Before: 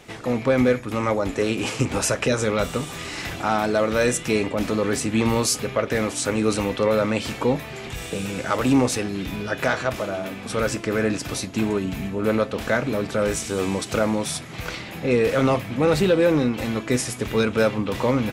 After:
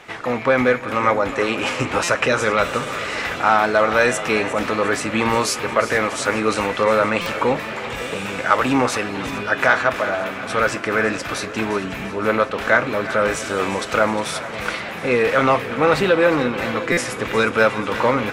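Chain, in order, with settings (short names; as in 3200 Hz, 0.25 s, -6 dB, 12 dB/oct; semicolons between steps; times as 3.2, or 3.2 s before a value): bell 1400 Hz +14 dB 2.9 oct; on a send: split-band echo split 600 Hz, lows 0.554 s, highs 0.356 s, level -14 dB; on the sum: stuck buffer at 2.03/7.21/16.92, samples 256, times 8; warbling echo 0.429 s, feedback 68%, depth 98 cents, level -18 dB; gain -4.5 dB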